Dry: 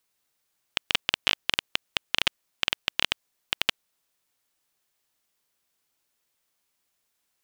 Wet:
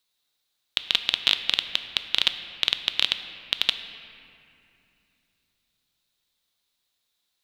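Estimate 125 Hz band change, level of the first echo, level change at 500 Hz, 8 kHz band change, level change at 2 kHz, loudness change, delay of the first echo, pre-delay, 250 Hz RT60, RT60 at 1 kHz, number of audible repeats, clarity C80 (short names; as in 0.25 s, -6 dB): n/a, none, -3.5 dB, -2.0 dB, -1.0 dB, +3.5 dB, none, 4 ms, 3.7 s, 2.6 s, none, 10.5 dB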